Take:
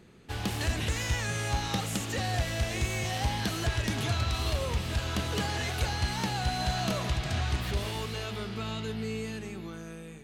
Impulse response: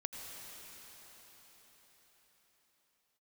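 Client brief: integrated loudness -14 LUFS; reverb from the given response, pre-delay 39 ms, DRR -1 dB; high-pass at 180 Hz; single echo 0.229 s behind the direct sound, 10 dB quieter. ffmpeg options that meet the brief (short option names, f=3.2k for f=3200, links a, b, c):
-filter_complex "[0:a]highpass=180,aecho=1:1:229:0.316,asplit=2[a][b];[1:a]atrim=start_sample=2205,adelay=39[c];[b][c]afir=irnorm=-1:irlink=0,volume=1dB[d];[a][d]amix=inputs=2:normalize=0,volume=15.5dB"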